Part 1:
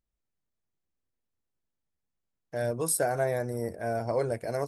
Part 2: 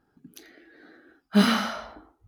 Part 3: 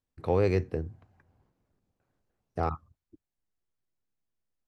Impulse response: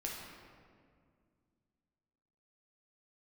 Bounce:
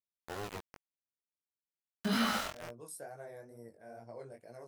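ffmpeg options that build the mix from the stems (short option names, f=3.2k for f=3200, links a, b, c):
-filter_complex "[0:a]highpass=120,volume=-16.5dB[a];[1:a]adelay=700,volume=2dB[b];[2:a]volume=-11.5dB,asplit=2[c][d];[d]apad=whole_len=131201[e];[b][e]sidechaincompress=threshold=-58dB:ratio=3:attack=7.2:release=1100[f];[f][c]amix=inputs=2:normalize=0,aeval=exprs='val(0)*gte(abs(val(0)),0.0299)':c=same,alimiter=limit=-18.5dB:level=0:latency=1:release=54,volume=0dB[g];[a][g]amix=inputs=2:normalize=0,flanger=delay=16.5:depth=5.9:speed=2.2"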